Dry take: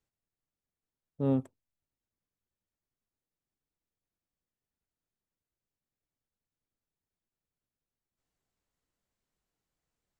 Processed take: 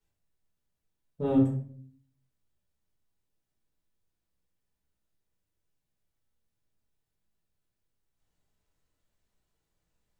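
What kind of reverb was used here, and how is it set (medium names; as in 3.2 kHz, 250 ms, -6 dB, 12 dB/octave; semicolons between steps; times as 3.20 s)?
simulated room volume 57 m³, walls mixed, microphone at 1.4 m; trim -2.5 dB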